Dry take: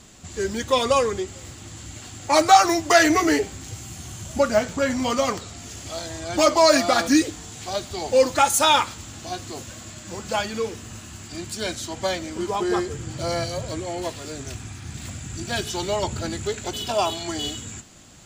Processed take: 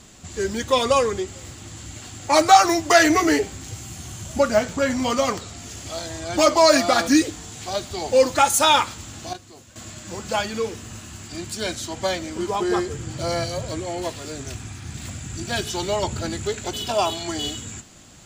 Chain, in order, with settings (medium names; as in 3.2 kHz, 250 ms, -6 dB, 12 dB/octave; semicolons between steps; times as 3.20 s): 9.33–9.76 s: gate -29 dBFS, range -12 dB; trim +1 dB